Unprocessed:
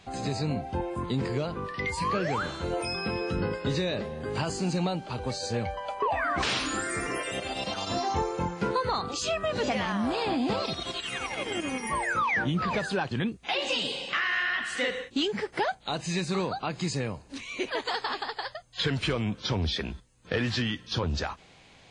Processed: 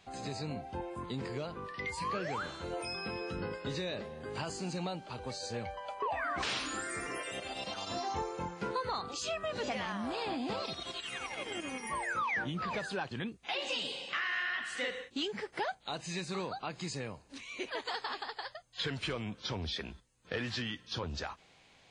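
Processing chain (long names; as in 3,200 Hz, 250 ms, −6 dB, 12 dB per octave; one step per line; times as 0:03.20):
low-shelf EQ 330 Hz −5 dB
level −6.5 dB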